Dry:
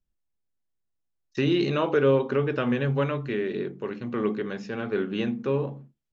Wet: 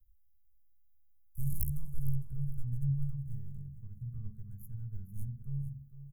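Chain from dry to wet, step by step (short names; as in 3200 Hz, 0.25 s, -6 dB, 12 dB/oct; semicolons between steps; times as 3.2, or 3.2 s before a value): tracing distortion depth 0.13 ms; inverse Chebyshev band-stop 270–5400 Hz, stop band 60 dB; feedback echo 0.456 s, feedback 22%, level -13 dB; gain +15 dB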